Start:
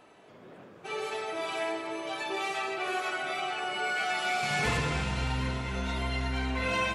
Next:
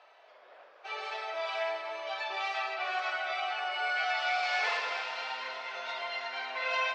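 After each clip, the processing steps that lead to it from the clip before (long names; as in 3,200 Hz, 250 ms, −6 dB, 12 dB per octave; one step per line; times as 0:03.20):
elliptic band-pass filter 600–5,100 Hz, stop band 80 dB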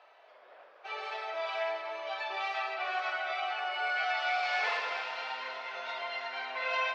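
high-shelf EQ 6,600 Hz −10.5 dB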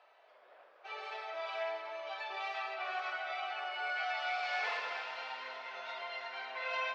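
convolution reverb RT60 3.2 s, pre-delay 106 ms, DRR 14.5 dB
level −5 dB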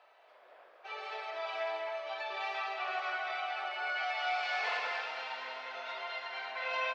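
single-tap delay 209 ms −6.5 dB
level +1.5 dB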